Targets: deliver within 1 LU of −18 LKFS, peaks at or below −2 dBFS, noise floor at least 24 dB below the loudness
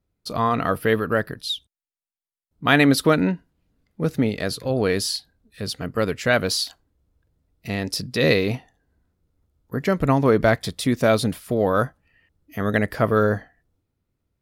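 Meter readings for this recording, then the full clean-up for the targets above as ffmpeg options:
integrated loudness −22.0 LKFS; sample peak −3.0 dBFS; target loudness −18.0 LKFS
→ -af "volume=4dB,alimiter=limit=-2dB:level=0:latency=1"

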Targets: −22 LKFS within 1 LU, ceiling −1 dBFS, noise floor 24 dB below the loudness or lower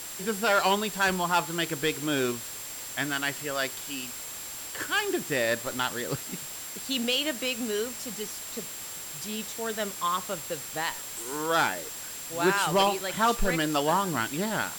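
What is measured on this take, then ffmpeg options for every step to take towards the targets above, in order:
interfering tone 7,500 Hz; level of the tone −41 dBFS; background noise floor −39 dBFS; target noise floor −53 dBFS; integrated loudness −28.5 LKFS; sample peak −13.0 dBFS; target loudness −22.0 LKFS
→ -af "bandreject=frequency=7500:width=30"
-af "afftdn=noise_reduction=14:noise_floor=-39"
-af "volume=6.5dB"

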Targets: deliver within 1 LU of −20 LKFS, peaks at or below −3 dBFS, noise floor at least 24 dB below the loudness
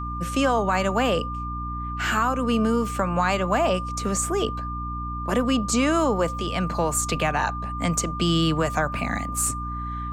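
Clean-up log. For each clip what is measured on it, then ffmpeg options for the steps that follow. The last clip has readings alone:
mains hum 60 Hz; hum harmonics up to 300 Hz; level of the hum −30 dBFS; interfering tone 1,200 Hz; level of the tone −31 dBFS; integrated loudness −24.0 LKFS; sample peak −9.0 dBFS; target loudness −20.0 LKFS
→ -af "bandreject=frequency=60:width_type=h:width=4,bandreject=frequency=120:width_type=h:width=4,bandreject=frequency=180:width_type=h:width=4,bandreject=frequency=240:width_type=h:width=4,bandreject=frequency=300:width_type=h:width=4"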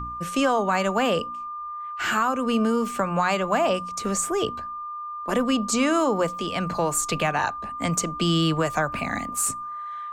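mains hum none found; interfering tone 1,200 Hz; level of the tone −31 dBFS
→ -af "bandreject=frequency=1200:width=30"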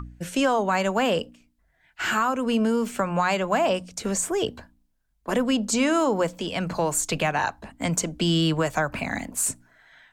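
interfering tone none found; integrated loudness −24.5 LKFS; sample peak −9.5 dBFS; target loudness −20.0 LKFS
→ -af "volume=4.5dB"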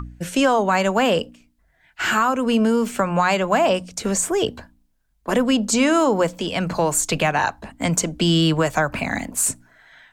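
integrated loudness −20.0 LKFS; sample peak −5.0 dBFS; background noise floor −64 dBFS

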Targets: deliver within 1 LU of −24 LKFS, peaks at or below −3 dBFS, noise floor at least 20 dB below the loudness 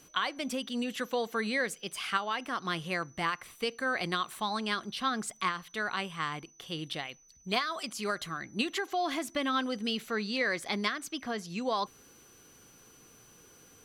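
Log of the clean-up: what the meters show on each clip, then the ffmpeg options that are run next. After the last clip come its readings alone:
interfering tone 6,000 Hz; level of the tone −59 dBFS; integrated loudness −33.0 LKFS; sample peak −14.5 dBFS; target loudness −24.0 LKFS
→ -af "bandreject=frequency=6000:width=30"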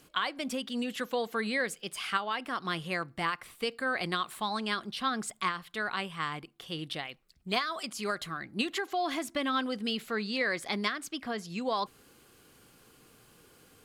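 interfering tone none found; integrated loudness −33.0 LKFS; sample peak −14.5 dBFS; target loudness −24.0 LKFS
→ -af "volume=9dB"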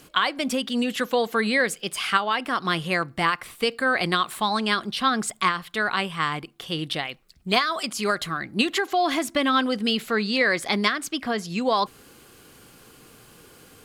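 integrated loudness −24.0 LKFS; sample peak −5.5 dBFS; background noise floor −53 dBFS

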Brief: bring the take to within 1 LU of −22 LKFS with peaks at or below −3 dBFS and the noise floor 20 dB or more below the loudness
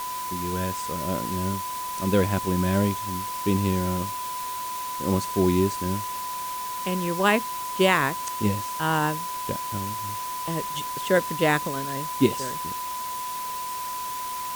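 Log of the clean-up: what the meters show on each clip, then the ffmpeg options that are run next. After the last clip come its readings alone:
interfering tone 1,000 Hz; level of the tone −30 dBFS; background noise floor −32 dBFS; target noise floor −46 dBFS; integrated loudness −26.0 LKFS; sample peak −6.5 dBFS; target loudness −22.0 LKFS
→ -af "bandreject=frequency=1000:width=30"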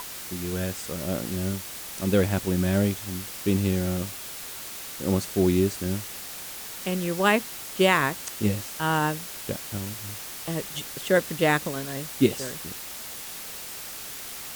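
interfering tone none found; background noise floor −38 dBFS; target noise floor −48 dBFS
→ -af "afftdn=noise_reduction=10:noise_floor=-38"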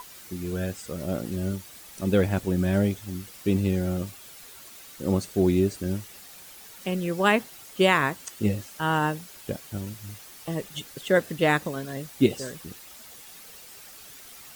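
background noise floor −47 dBFS; integrated loudness −27.0 LKFS; sample peak −7.0 dBFS; target loudness −22.0 LKFS
→ -af "volume=5dB,alimiter=limit=-3dB:level=0:latency=1"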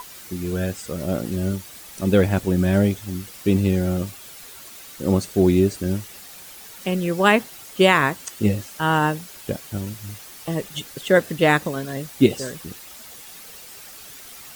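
integrated loudness −22.0 LKFS; sample peak −3.0 dBFS; background noise floor −42 dBFS

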